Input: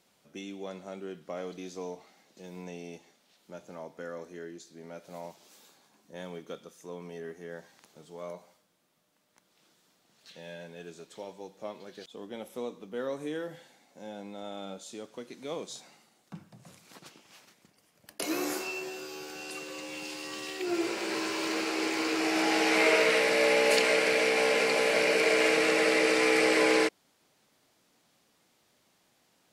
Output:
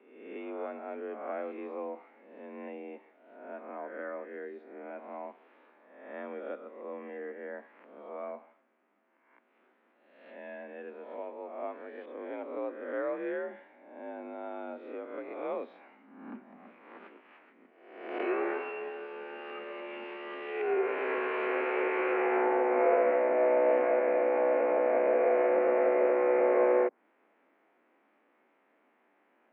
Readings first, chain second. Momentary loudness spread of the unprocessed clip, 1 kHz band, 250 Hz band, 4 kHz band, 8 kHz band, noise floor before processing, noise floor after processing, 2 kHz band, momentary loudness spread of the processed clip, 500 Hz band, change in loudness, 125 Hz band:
22 LU, +0.5 dB, -3.0 dB, under -20 dB, under -40 dB, -70 dBFS, -70 dBFS, -9.0 dB, 19 LU, +1.5 dB, -3.5 dB, under -15 dB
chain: spectral swells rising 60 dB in 0.91 s; mistuned SSB +51 Hz 180–2300 Hz; treble ducked by the level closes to 900 Hz, closed at -21.5 dBFS

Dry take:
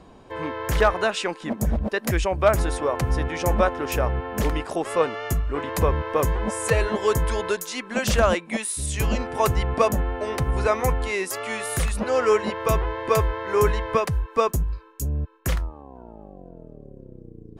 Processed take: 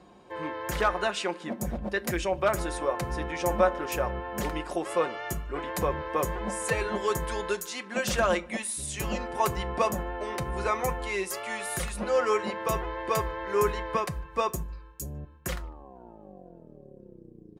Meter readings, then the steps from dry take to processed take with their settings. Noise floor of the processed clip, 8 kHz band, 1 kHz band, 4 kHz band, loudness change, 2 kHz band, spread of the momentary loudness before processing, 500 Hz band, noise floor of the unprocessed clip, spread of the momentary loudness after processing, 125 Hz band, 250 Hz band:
-51 dBFS, -4.0 dB, -4.0 dB, -4.5 dB, -6.0 dB, -4.0 dB, 8 LU, -5.5 dB, -47 dBFS, 11 LU, -11.0 dB, -5.5 dB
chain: HPF 69 Hz; bell 140 Hz -6.5 dB 0.6 oct; comb 5.6 ms, depth 51%; speakerphone echo 0.15 s, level -27 dB; shoebox room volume 250 m³, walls furnished, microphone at 0.34 m; gain -5.5 dB

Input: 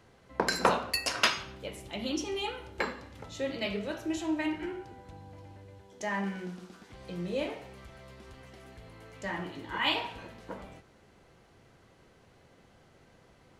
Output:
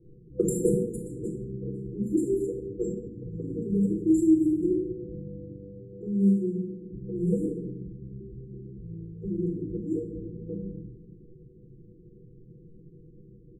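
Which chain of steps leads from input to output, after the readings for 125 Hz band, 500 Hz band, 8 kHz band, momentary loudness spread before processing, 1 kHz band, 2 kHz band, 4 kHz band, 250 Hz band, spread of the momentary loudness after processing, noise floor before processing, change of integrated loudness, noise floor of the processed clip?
+12.0 dB, +6.0 dB, n/a, 23 LU, under -40 dB, under -40 dB, under -40 dB, +11.5 dB, 19 LU, -61 dBFS, +4.0 dB, -52 dBFS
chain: FFT band-reject 500–7100 Hz; low-pass opened by the level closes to 450 Hz, open at -31.5 dBFS; comb 5.8 ms, depth 83%; shoebox room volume 2000 m³, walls furnished, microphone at 4 m; gain +2.5 dB

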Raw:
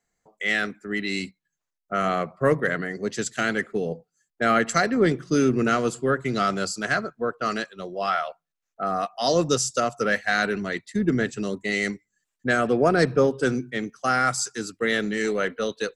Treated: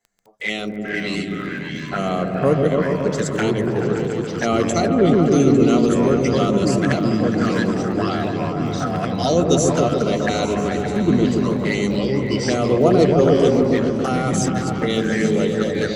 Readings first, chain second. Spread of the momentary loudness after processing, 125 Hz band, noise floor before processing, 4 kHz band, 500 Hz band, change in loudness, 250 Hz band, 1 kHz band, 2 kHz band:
9 LU, +10.5 dB, -83 dBFS, +3.0 dB, +6.5 dB, +5.5 dB, +9.0 dB, +1.5 dB, -2.5 dB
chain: envelope flanger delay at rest 10.1 ms, full sweep at -21 dBFS; repeats that get brighter 0.142 s, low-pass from 400 Hz, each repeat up 1 oct, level 0 dB; echoes that change speed 0.331 s, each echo -4 st, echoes 3, each echo -6 dB; crackle 36/s -40 dBFS; gain +4 dB

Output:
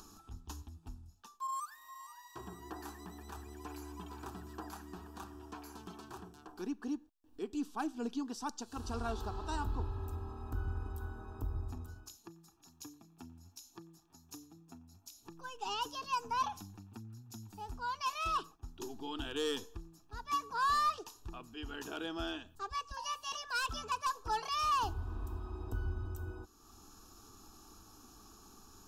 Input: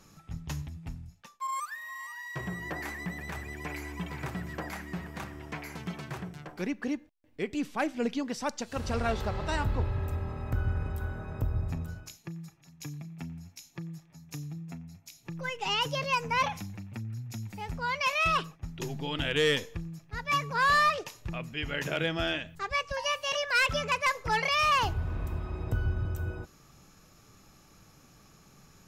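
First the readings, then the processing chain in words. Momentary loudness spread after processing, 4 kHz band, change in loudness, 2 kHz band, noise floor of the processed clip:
20 LU, -9.5 dB, -8.0 dB, -14.0 dB, -64 dBFS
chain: upward compressor, threshold -40 dBFS; fixed phaser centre 560 Hz, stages 6; gain -4.5 dB

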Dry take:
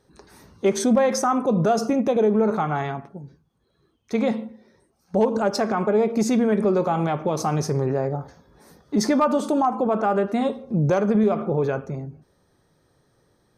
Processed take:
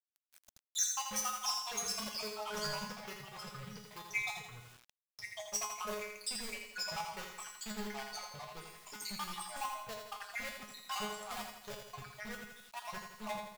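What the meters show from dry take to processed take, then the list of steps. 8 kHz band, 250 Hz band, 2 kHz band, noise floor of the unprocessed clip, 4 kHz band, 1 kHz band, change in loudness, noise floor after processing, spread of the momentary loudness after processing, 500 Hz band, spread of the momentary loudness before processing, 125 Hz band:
-2.5 dB, -28.5 dB, -7.0 dB, -66 dBFS, -2.0 dB, -16.5 dB, -18.0 dB, under -85 dBFS, 13 LU, -26.0 dB, 9 LU, -26.5 dB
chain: random spectral dropouts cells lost 84%; echoes that change speed 0.577 s, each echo -2 st, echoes 2, each echo -6 dB; in parallel at -9.5 dB: wrapped overs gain 26.5 dB; on the sum: limiter -19.5 dBFS, peak gain reduction 9 dB; sample leveller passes 3; spectral noise reduction 7 dB; power-law curve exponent 2; passive tone stack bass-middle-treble 10-0-10; resonator 210 Hz, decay 0.4 s, harmonics all, mix 90%; feedback echo 83 ms, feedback 50%, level -6 dB; bit-crush 12-bit; mismatched tape noise reduction encoder only; gain +11 dB

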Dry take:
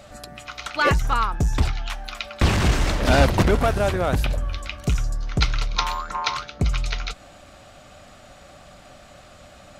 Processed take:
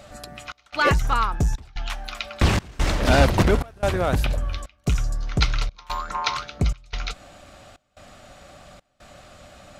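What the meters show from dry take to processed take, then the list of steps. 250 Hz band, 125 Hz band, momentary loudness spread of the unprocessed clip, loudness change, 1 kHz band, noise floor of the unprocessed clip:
-0.5 dB, -1.0 dB, 14 LU, -1.0 dB, -1.0 dB, -47 dBFS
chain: step gate "xxxxx..xxx" 145 bpm -24 dB

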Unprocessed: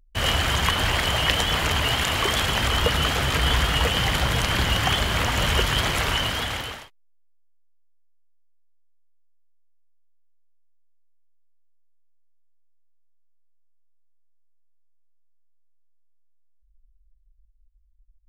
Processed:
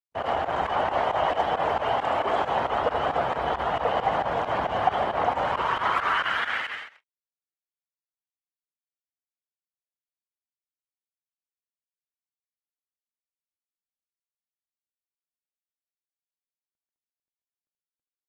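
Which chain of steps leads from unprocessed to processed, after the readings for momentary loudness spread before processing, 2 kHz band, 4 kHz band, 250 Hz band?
3 LU, -5.5 dB, -15.0 dB, -7.0 dB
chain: gate with hold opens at -51 dBFS; high shelf 2100 Hz -9.5 dB; sample leveller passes 3; loudspeakers at several distances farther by 27 m -9 dB, 47 m -11 dB; pump 135 bpm, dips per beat 2, -16 dB, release 79 ms; band-pass sweep 740 Hz -> 2000 Hz, 5.28–6.77; Opus 16 kbps 48000 Hz

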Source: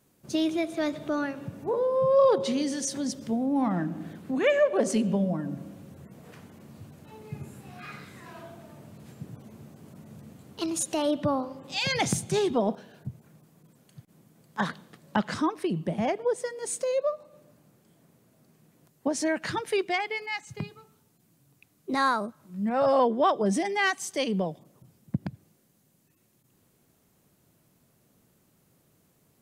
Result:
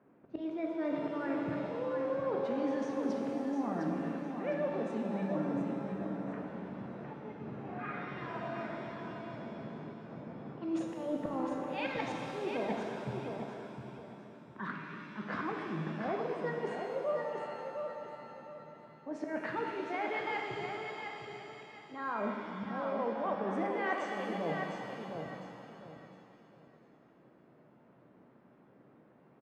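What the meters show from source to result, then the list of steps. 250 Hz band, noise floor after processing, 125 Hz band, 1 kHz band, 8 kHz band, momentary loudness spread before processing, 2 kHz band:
-6.5 dB, -62 dBFS, -7.5 dB, -7.0 dB, under -25 dB, 20 LU, -7.5 dB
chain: three-band isolator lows -19 dB, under 160 Hz, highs -23 dB, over 2200 Hz; low-pass opened by the level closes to 2000 Hz, open at -22 dBFS; auto swell 0.198 s; spectral gain 13.28–15.25, 410–910 Hz -13 dB; LPF 8600 Hz; reverse; compressor 10:1, threshold -39 dBFS, peak gain reduction 22 dB; reverse; notches 50/100/150/200 Hz; on a send: feedback echo 0.707 s, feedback 28%, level -6 dB; on the sum: shimmer reverb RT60 2.5 s, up +7 st, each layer -8 dB, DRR 1.5 dB; gain +4.5 dB

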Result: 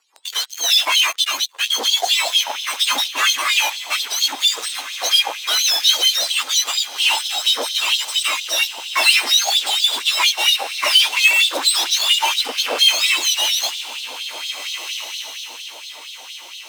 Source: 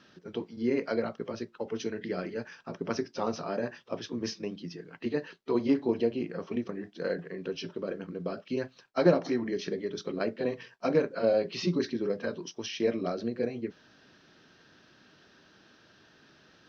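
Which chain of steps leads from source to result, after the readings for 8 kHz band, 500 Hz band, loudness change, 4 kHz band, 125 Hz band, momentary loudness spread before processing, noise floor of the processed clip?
n/a, -4.0 dB, +16.5 dB, +32.0 dB, under -30 dB, 12 LU, -37 dBFS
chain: spectrum mirrored in octaves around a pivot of 1200 Hz; dynamic EQ 3400 Hz, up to +4 dB, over -45 dBFS, Q 1.1; in parallel at -7 dB: fuzz box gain 43 dB, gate -48 dBFS; on the sum: diffused feedback echo 1.674 s, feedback 42%, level -11 dB; LFO high-pass sine 4.3 Hz 660–3700 Hz; gain +1 dB

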